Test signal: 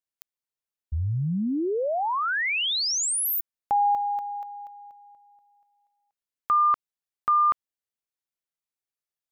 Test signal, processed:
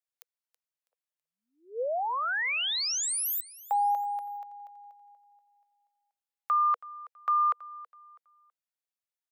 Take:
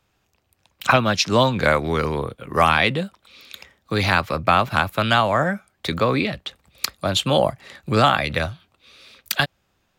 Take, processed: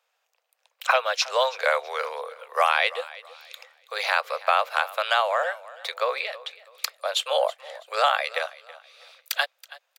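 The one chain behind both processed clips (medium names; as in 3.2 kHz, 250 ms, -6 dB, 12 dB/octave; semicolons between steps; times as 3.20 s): Chebyshev high-pass 480 Hz, order 6; feedback delay 326 ms, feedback 30%, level -19 dB; trim -3.5 dB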